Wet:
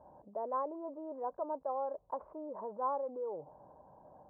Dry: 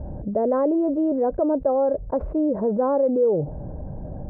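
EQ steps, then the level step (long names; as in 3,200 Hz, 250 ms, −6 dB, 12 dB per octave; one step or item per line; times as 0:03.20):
resonant band-pass 1,000 Hz, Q 4.6
−2.5 dB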